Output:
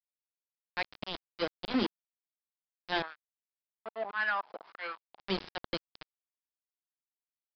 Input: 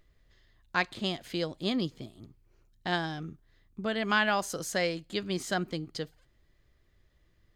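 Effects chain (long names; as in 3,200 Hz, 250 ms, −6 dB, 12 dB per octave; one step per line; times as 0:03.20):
Butterworth high-pass 190 Hz 72 dB per octave
parametric band 1,300 Hz −8 dB 0.3 octaves
mains-hum notches 60/120/180/240/300/360/420 Hz
volume swells 112 ms
centre clipping without the shift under −32 dBFS
0:03.02–0:05.20: LFO wah 1.8 Hz 740–1,500 Hz, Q 3.6
soft clipping −28.5 dBFS, distortion −14 dB
downsampling to 11,025 Hz
level +6.5 dB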